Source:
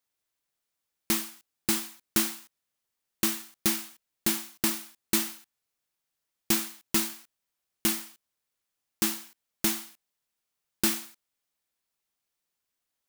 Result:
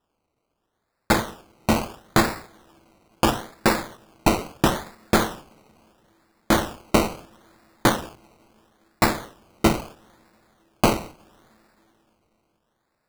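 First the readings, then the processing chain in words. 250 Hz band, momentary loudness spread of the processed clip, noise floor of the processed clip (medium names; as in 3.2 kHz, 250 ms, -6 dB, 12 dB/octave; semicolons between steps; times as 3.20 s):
+9.0 dB, 13 LU, -76 dBFS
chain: two-slope reverb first 0.38 s, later 4 s, from -18 dB, DRR 19.5 dB; decimation with a swept rate 20×, swing 60% 0.75 Hz; trim +7.5 dB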